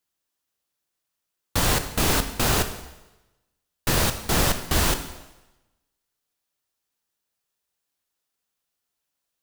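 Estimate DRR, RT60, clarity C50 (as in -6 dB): 8.5 dB, 1.0 s, 10.5 dB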